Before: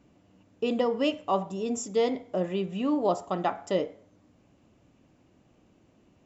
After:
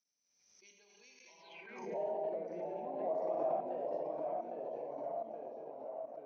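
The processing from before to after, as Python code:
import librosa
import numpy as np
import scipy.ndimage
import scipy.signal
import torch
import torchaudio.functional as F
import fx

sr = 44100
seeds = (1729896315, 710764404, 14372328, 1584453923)

p1 = fx.pitch_glide(x, sr, semitones=-3.5, runs='ending unshifted')
p2 = fx.rev_gated(p1, sr, seeds[0], gate_ms=310, shape='flat', drr_db=1.0)
p3 = fx.level_steps(p2, sr, step_db=16)
p4 = fx.echo_pitch(p3, sr, ms=589, semitones=-1, count=3, db_per_echo=-3.0)
p5 = fx.filter_sweep_bandpass(p4, sr, from_hz=6000.0, to_hz=660.0, start_s=1.37, end_s=1.9, q=6.9)
p6 = p5 + fx.echo_stepped(p5, sr, ms=534, hz=240.0, octaves=0.7, feedback_pct=70, wet_db=-9.5, dry=0)
p7 = fx.pre_swell(p6, sr, db_per_s=54.0)
y = p7 * librosa.db_to_amplitude(2.5)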